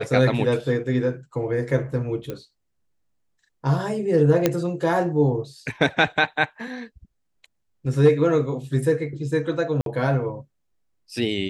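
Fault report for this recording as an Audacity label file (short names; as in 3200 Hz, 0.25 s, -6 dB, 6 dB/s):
2.300000	2.300000	pop -17 dBFS
4.460000	4.460000	pop -4 dBFS
9.810000	9.860000	gap 52 ms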